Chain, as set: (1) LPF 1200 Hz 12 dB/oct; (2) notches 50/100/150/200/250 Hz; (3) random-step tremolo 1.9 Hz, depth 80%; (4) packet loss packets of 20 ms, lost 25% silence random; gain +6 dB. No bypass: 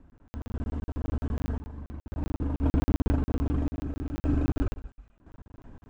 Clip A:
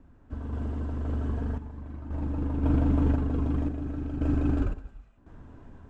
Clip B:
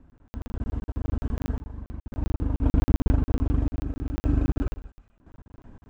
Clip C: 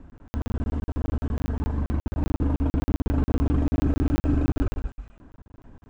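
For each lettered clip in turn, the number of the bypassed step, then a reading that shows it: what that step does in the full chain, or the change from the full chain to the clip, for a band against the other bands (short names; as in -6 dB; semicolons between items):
4, crest factor change -1.5 dB; 2, 125 Hz band +2.5 dB; 3, momentary loudness spread change -6 LU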